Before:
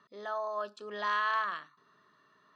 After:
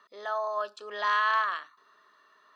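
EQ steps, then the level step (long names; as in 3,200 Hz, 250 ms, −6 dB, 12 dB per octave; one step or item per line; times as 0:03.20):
high-pass filter 490 Hz 12 dB per octave
+5.0 dB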